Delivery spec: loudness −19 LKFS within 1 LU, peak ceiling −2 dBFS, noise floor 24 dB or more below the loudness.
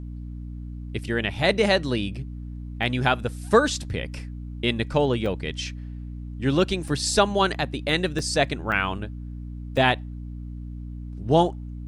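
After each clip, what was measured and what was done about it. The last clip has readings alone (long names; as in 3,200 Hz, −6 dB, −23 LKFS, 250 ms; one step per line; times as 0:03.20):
number of dropouts 6; longest dropout 2.4 ms; mains hum 60 Hz; hum harmonics up to 300 Hz; level of the hum −33 dBFS; integrated loudness −24.0 LKFS; sample peak −5.0 dBFS; target loudness −19.0 LKFS
→ repair the gap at 0:02.83/0:05.26/0:06.88/0:08.19/0:08.72/0:09.77, 2.4 ms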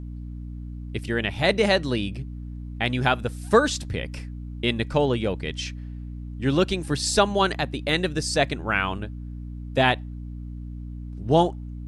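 number of dropouts 0; mains hum 60 Hz; hum harmonics up to 300 Hz; level of the hum −33 dBFS
→ hum removal 60 Hz, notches 5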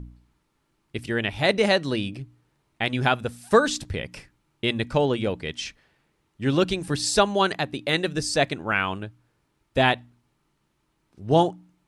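mains hum none found; integrated loudness −24.0 LKFS; sample peak −5.5 dBFS; target loudness −19.0 LKFS
→ level +5 dB
brickwall limiter −2 dBFS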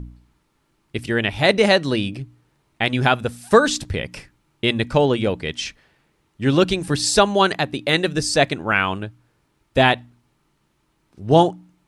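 integrated loudness −19.5 LKFS; sample peak −2.0 dBFS; background noise floor −67 dBFS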